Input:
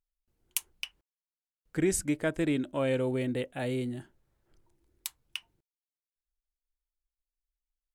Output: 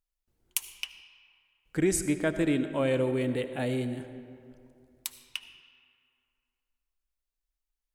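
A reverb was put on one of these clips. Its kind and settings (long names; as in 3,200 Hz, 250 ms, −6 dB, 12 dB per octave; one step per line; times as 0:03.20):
comb and all-pass reverb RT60 2.5 s, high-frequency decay 0.55×, pre-delay 35 ms, DRR 10 dB
level +1.5 dB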